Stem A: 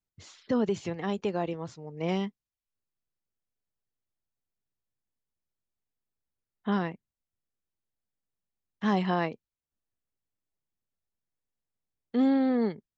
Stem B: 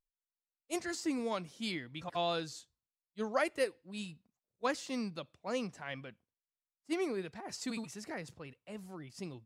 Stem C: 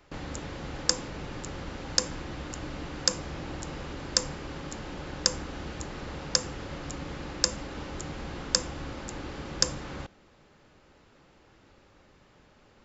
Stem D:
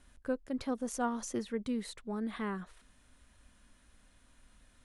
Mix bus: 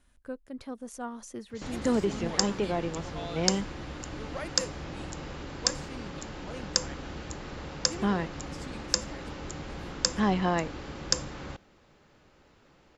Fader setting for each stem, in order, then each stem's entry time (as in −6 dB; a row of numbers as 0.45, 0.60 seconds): +0.5, −7.0, −1.5, −4.5 decibels; 1.35, 1.00, 1.50, 0.00 seconds